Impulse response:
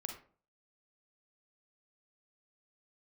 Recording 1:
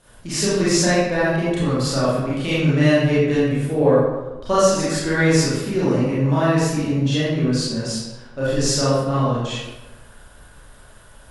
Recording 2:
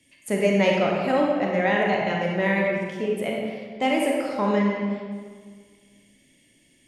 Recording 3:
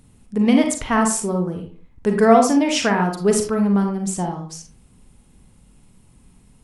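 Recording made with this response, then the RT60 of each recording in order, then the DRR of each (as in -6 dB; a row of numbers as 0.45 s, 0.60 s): 3; 1.1 s, 1.7 s, 0.45 s; -10.0 dB, -1.5 dB, 3.0 dB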